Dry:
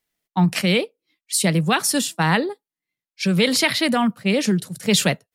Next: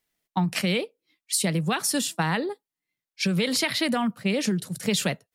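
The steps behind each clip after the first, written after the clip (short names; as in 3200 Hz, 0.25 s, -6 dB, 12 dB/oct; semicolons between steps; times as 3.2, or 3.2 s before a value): compressor 4:1, threshold -22 dBFS, peak gain reduction 8.5 dB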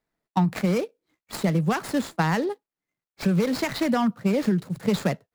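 median filter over 15 samples; gain +3 dB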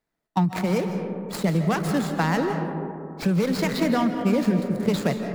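reverb RT60 2.7 s, pre-delay 0.115 s, DRR 5.5 dB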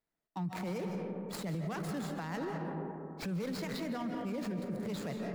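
limiter -21.5 dBFS, peak gain reduction 12 dB; gain -8.5 dB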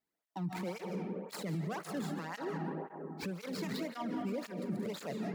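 tape flanging out of phase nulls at 1.9 Hz, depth 2.1 ms; gain +2.5 dB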